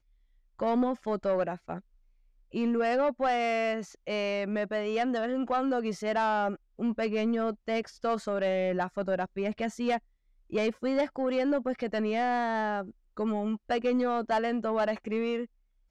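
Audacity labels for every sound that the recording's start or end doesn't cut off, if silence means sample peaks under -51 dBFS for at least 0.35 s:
0.590000	1.800000	sound
2.520000	9.990000	sound
10.500000	15.460000	sound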